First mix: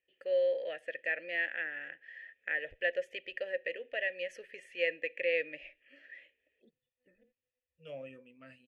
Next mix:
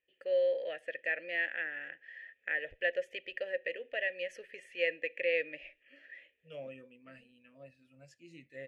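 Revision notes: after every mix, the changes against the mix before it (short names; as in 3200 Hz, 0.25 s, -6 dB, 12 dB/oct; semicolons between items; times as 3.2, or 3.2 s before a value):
second voice: entry -1.35 s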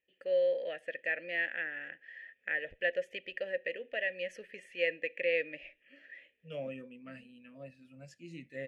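second voice +4.0 dB; master: add bell 200 Hz +12.5 dB 0.54 oct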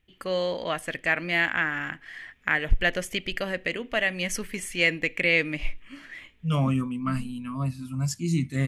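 master: remove vowel filter e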